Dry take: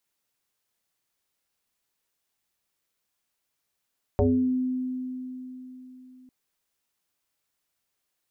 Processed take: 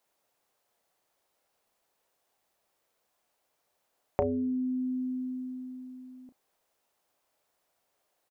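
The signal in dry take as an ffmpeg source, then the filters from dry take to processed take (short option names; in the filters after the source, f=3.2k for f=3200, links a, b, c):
-f lavfi -i "aevalsrc='0.141*pow(10,-3*t/3.9)*sin(2*PI*255*t+2.9*pow(10,-3*t/0.52)*sin(2*PI*0.63*255*t))':d=2.1:s=44100"
-filter_complex "[0:a]equalizer=f=650:w=0.77:g=13.5,acompressor=threshold=-28dB:ratio=4,asplit=2[a][b];[b]adelay=33,volume=-13dB[c];[a][c]amix=inputs=2:normalize=0"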